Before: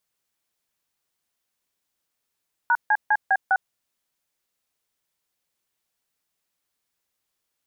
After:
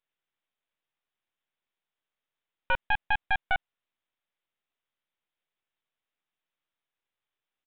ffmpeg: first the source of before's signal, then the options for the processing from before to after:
-f lavfi -i "aevalsrc='0.119*clip(min(mod(t,0.202),0.052-mod(t,0.202))/0.002,0,1)*(eq(floor(t/0.202),0)*(sin(2*PI*941*mod(t,0.202))+sin(2*PI*1477*mod(t,0.202)))+eq(floor(t/0.202),1)*(sin(2*PI*852*mod(t,0.202))+sin(2*PI*1633*mod(t,0.202)))+eq(floor(t/0.202),2)*(sin(2*PI*852*mod(t,0.202))+sin(2*PI*1633*mod(t,0.202)))+eq(floor(t/0.202),3)*(sin(2*PI*770*mod(t,0.202))+sin(2*PI*1633*mod(t,0.202)))+eq(floor(t/0.202),4)*(sin(2*PI*770*mod(t,0.202))+sin(2*PI*1477*mod(t,0.202))))':d=1.01:s=44100"
-af "lowshelf=f=390:g=-8.5,aresample=8000,aeval=exprs='max(val(0),0)':c=same,aresample=44100"

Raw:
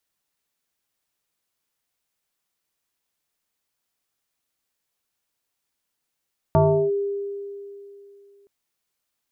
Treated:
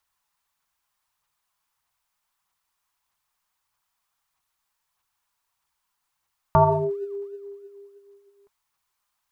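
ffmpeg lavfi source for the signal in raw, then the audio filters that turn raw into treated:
-f lavfi -i "aevalsrc='0.251*pow(10,-3*t/2.81)*sin(2*PI*401*t+2*clip(1-t/0.36,0,1)*sin(2*PI*0.62*401*t))':d=1.92:s=44100"
-af "lowshelf=f=150:g=3.5,aphaser=in_gain=1:out_gain=1:delay=5:decay=0.34:speed=1.6:type=sinusoidal,equalizer=f=250:t=o:w=1:g=-8,equalizer=f=500:t=o:w=1:g=-8,equalizer=f=1k:t=o:w=1:g=12"

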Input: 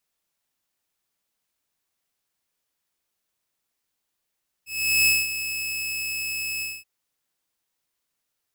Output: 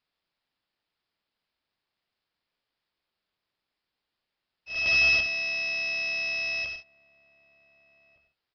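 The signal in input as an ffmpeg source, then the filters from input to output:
-f lavfi -i "aevalsrc='0.224*(2*mod(2590*t,1)-1)':d=2.179:s=44100,afade=t=in:d=0.403,afade=t=out:st=0.403:d=0.207:silence=0.266,afade=t=out:st=1.96:d=0.219"
-filter_complex "[0:a]aresample=11025,acrusher=bits=2:mode=log:mix=0:aa=0.000001,aresample=44100,asplit=2[a][b];[b]adelay=1516,volume=-22dB,highshelf=f=4k:g=-34.1[c];[a][c]amix=inputs=2:normalize=0"

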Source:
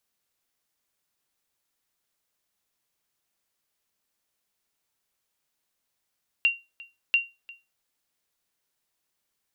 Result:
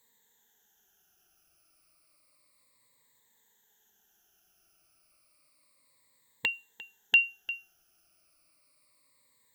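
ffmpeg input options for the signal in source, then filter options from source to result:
-f lavfi -i "aevalsrc='0.211*(sin(2*PI*2760*mod(t,0.69))*exp(-6.91*mod(t,0.69)/0.24)+0.075*sin(2*PI*2760*max(mod(t,0.69)-0.35,0))*exp(-6.91*max(mod(t,0.69)-0.35,0)/0.24))':d=1.38:s=44100"
-filter_complex "[0:a]afftfilt=real='re*pow(10,19/40*sin(2*PI*(1*log(max(b,1)*sr/1024/100)/log(2)-(-0.31)*(pts-256)/sr)))':imag='im*pow(10,19/40*sin(2*PI*(1*log(max(b,1)*sr/1024/100)/log(2)-(-0.31)*(pts-256)/sr)))':win_size=1024:overlap=0.75,equalizer=f=3.2k:t=o:w=0.77:g=-2.5,asplit=2[a][b];[b]alimiter=limit=-23.5dB:level=0:latency=1:release=35,volume=1.5dB[c];[a][c]amix=inputs=2:normalize=0"

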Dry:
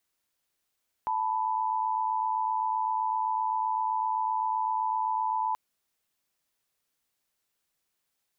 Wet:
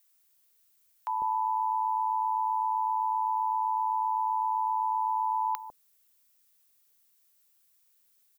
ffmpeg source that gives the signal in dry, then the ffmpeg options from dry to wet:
-f lavfi -i "aevalsrc='0.0376*(sin(2*PI*880*t)+sin(2*PI*987.77*t))':d=4.48:s=44100"
-filter_complex "[0:a]aemphasis=mode=production:type=50kf,acrossover=split=660[a][b];[a]adelay=150[c];[c][b]amix=inputs=2:normalize=0"

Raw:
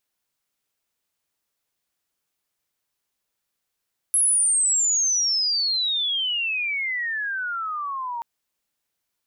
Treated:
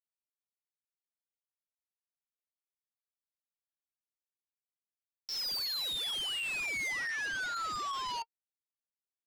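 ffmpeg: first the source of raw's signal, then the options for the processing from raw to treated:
-f lavfi -i "aevalsrc='pow(10,(-16-11*t/4.08)/20)*sin(2*PI*11000*4.08/log(920/11000)*(exp(log(920/11000)*t/4.08)-1))':d=4.08:s=44100"
-af "aresample=11025,acrusher=bits=4:mix=0:aa=0.000001,aresample=44100,flanger=delay=1.7:depth=2:regen=72:speed=0.35:shape=triangular,asoftclip=type=tanh:threshold=-33.5dB"

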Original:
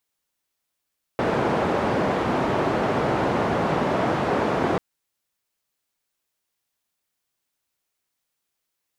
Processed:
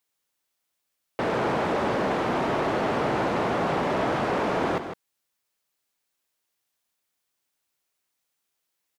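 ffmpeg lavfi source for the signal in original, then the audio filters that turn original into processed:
-f lavfi -i "anoisesrc=c=white:d=3.59:r=44100:seed=1,highpass=f=110,lowpass=f=760,volume=-2.9dB"
-af "lowshelf=f=170:g=-5.5,asoftclip=type=tanh:threshold=-19.5dB,aecho=1:1:156:0.355"

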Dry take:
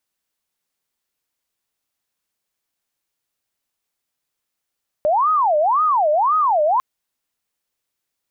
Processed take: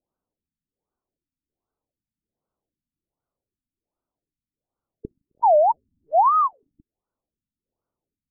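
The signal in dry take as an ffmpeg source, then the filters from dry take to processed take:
-f lavfi -i "aevalsrc='0.211*sin(2*PI*(928*t-332/(2*PI*1.9)*sin(2*PI*1.9*t)))':d=1.75:s=44100"
-af "tiltshelf=f=1.1k:g=4.5,aphaser=in_gain=1:out_gain=1:delay=3.2:decay=0.22:speed=0.38:type=sinusoidal,afftfilt=real='re*lt(b*sr/1024,280*pow(1600/280,0.5+0.5*sin(2*PI*1.3*pts/sr)))':imag='im*lt(b*sr/1024,280*pow(1600/280,0.5+0.5*sin(2*PI*1.3*pts/sr)))':win_size=1024:overlap=0.75"

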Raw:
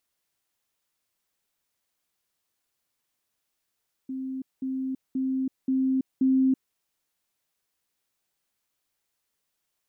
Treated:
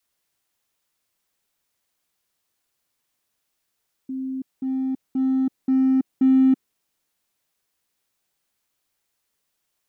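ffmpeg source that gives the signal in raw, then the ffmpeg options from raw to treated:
-f lavfi -i "aevalsrc='pow(10,(-30+3*floor(t/0.53))/20)*sin(2*PI*263*t)*clip(min(mod(t,0.53),0.33-mod(t,0.53))/0.005,0,1)':d=2.65:s=44100"
-filter_complex "[0:a]adynamicequalizer=threshold=0.0251:dfrequency=250:dqfactor=0.91:tfrequency=250:tqfactor=0.91:attack=5:release=100:ratio=0.375:range=2.5:mode=boostabove:tftype=bell,asplit=2[a][b];[b]asoftclip=type=hard:threshold=-29dB,volume=-6dB[c];[a][c]amix=inputs=2:normalize=0"

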